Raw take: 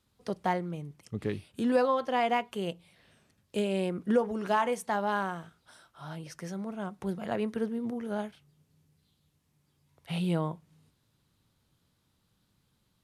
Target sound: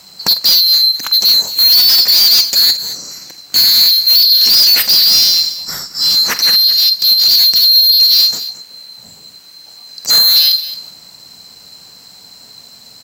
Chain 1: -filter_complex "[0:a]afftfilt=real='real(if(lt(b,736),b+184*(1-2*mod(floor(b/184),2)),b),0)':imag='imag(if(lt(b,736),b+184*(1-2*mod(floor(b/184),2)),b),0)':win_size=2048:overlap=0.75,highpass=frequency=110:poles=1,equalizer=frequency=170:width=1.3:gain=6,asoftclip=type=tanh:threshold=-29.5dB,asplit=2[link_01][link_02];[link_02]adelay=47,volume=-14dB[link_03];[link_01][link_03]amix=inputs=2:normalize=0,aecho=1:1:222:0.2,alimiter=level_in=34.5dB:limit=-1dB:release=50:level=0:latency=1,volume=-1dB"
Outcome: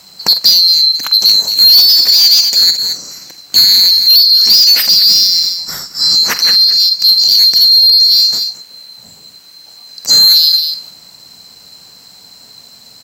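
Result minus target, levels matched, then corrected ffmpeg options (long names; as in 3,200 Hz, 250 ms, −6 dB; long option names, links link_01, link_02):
soft clipping: distortion −6 dB
-filter_complex "[0:a]afftfilt=real='real(if(lt(b,736),b+184*(1-2*mod(floor(b/184),2)),b),0)':imag='imag(if(lt(b,736),b+184*(1-2*mod(floor(b/184),2)),b),0)':win_size=2048:overlap=0.75,highpass=frequency=110:poles=1,equalizer=frequency=170:width=1.3:gain=6,asoftclip=type=tanh:threshold=-41dB,asplit=2[link_01][link_02];[link_02]adelay=47,volume=-14dB[link_03];[link_01][link_03]amix=inputs=2:normalize=0,aecho=1:1:222:0.2,alimiter=level_in=34.5dB:limit=-1dB:release=50:level=0:latency=1,volume=-1dB"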